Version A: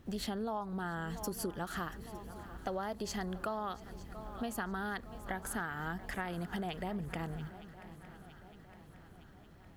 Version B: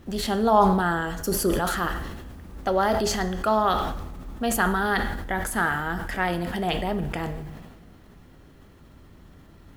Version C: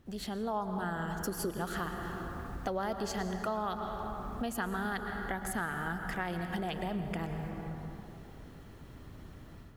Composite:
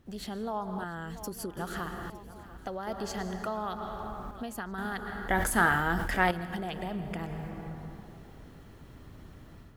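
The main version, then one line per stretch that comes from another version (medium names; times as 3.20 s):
C
0.84–1.57 s: from A
2.10–2.87 s: from A
4.31–4.78 s: from A
5.28–6.31 s: from B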